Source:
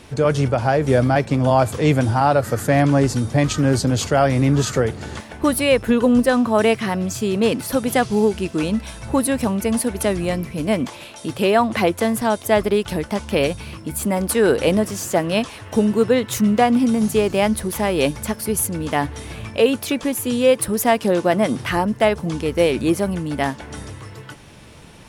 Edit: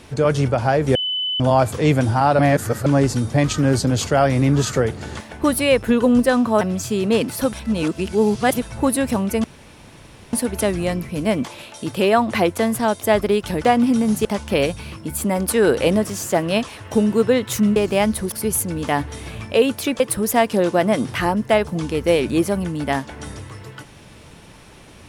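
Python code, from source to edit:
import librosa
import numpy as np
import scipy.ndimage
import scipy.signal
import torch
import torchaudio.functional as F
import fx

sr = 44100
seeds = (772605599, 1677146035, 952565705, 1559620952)

y = fx.edit(x, sr, fx.bleep(start_s=0.95, length_s=0.45, hz=3010.0, db=-20.0),
    fx.reverse_span(start_s=2.39, length_s=0.47),
    fx.cut(start_s=6.61, length_s=0.31),
    fx.reverse_span(start_s=7.84, length_s=1.09),
    fx.insert_room_tone(at_s=9.75, length_s=0.89),
    fx.move(start_s=16.57, length_s=0.61, to_s=13.06),
    fx.cut(start_s=17.74, length_s=0.62),
    fx.cut(start_s=20.04, length_s=0.47), tone=tone)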